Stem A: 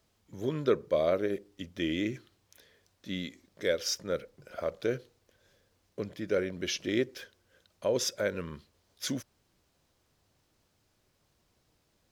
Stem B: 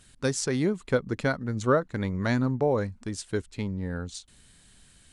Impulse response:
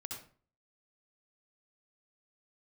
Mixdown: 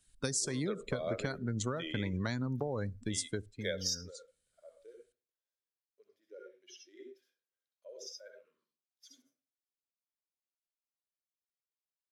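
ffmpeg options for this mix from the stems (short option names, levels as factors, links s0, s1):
-filter_complex "[0:a]highpass=450,volume=0.501,asplit=2[s0][s1];[s1]volume=0.355[s2];[1:a]acrossover=split=130|3000[s3][s4][s5];[s4]acompressor=threshold=0.0501:ratio=6[s6];[s3][s6][s5]amix=inputs=3:normalize=0,volume=0.794,afade=t=out:st=3.16:d=0.5:silence=0.316228,asplit=3[s7][s8][s9];[s8]volume=0.112[s10];[s9]apad=whole_len=534417[s11];[s0][s11]sidechaingate=range=0.0224:threshold=0.00501:ratio=16:detection=peak[s12];[2:a]atrim=start_sample=2205[s13];[s2][s10]amix=inputs=2:normalize=0[s14];[s14][s13]afir=irnorm=-1:irlink=0[s15];[s12][s7][s15]amix=inputs=3:normalize=0,highshelf=f=3700:g=10,afftdn=nr=19:nf=-41,acompressor=threshold=0.0282:ratio=6"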